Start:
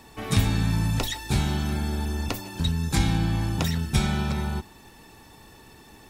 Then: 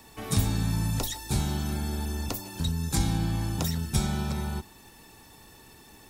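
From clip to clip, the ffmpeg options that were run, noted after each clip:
ffmpeg -i in.wav -filter_complex "[0:a]highshelf=frequency=5600:gain=7.5,acrossover=split=390|1500|3700[link_01][link_02][link_03][link_04];[link_03]acompressor=threshold=-46dB:ratio=6[link_05];[link_01][link_02][link_05][link_04]amix=inputs=4:normalize=0,volume=-3.5dB" out.wav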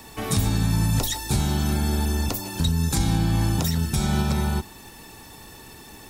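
ffmpeg -i in.wav -af "alimiter=limit=-20dB:level=0:latency=1:release=139,volume=8dB" out.wav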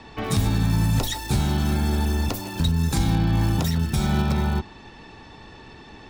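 ffmpeg -i in.wav -filter_complex "[0:a]acrossover=split=4700[link_01][link_02];[link_01]acontrast=77[link_03];[link_02]acrusher=bits=5:mix=0:aa=0.000001[link_04];[link_03][link_04]amix=inputs=2:normalize=0,volume=-5.5dB" out.wav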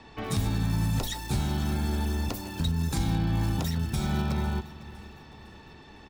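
ffmpeg -i in.wav -af "aecho=1:1:506|1012|1518|2024:0.126|0.0617|0.0302|0.0148,volume=-6dB" out.wav

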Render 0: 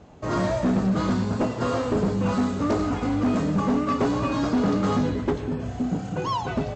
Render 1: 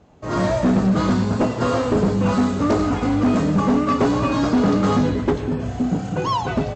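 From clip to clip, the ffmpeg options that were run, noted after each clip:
ffmpeg -i in.wav -af "dynaudnorm=framelen=210:gausssize=3:maxgain=9dB,volume=-4dB" out.wav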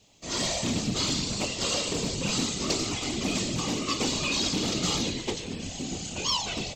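ffmpeg -i in.wav -af "afftfilt=real='hypot(re,im)*cos(2*PI*random(0))':imag='hypot(re,im)*sin(2*PI*random(1))':win_size=512:overlap=0.75,aexciter=amount=6.1:drive=9:freq=2300,volume=-7dB" out.wav

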